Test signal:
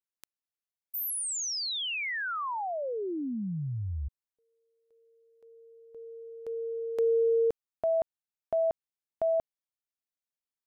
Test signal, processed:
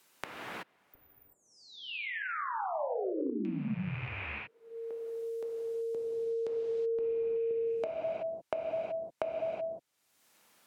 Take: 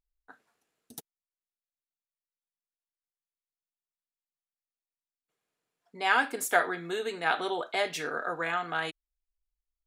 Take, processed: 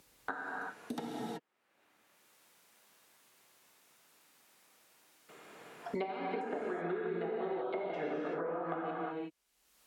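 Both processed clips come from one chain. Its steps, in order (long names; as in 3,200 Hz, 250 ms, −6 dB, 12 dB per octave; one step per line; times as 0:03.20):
loose part that buzzes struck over −40 dBFS, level −30 dBFS
downward compressor 16 to 1, threshold −32 dBFS
high-pass filter 170 Hz 12 dB per octave
treble cut that deepens with the level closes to 480 Hz, closed at −32.5 dBFS
reverb whose tail is shaped and stops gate 400 ms flat, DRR −4 dB
multiband upward and downward compressor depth 100%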